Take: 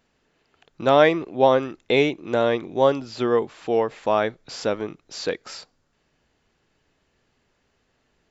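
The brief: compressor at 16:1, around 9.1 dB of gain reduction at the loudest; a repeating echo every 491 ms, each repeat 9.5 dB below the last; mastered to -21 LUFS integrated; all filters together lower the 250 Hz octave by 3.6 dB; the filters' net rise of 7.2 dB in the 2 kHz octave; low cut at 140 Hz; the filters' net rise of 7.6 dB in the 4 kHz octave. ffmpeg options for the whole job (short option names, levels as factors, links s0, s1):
-af "highpass=140,equalizer=f=250:t=o:g=-4.5,equalizer=f=2000:t=o:g=7,equalizer=f=4000:t=o:g=7,acompressor=threshold=0.126:ratio=16,aecho=1:1:491|982|1473|1964:0.335|0.111|0.0365|0.012,volume=1.78"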